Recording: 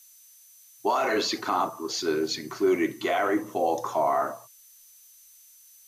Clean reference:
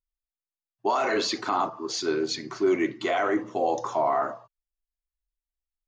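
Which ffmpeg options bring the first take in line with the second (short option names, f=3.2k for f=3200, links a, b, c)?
-af "bandreject=f=6.1k:w=30,afftdn=nr=30:nf=-54"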